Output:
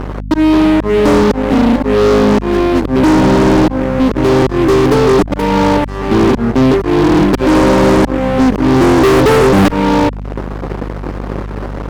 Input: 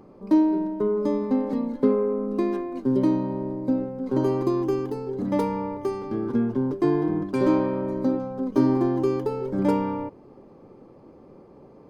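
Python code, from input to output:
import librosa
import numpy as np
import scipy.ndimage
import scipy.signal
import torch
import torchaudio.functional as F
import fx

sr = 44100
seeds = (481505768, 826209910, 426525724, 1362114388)

y = fx.auto_swell(x, sr, attack_ms=762.0)
y = fx.fuzz(y, sr, gain_db=39.0, gate_db=-48.0)
y = fx.add_hum(y, sr, base_hz=50, snr_db=12)
y = F.gain(torch.from_numpy(y), 6.5).numpy()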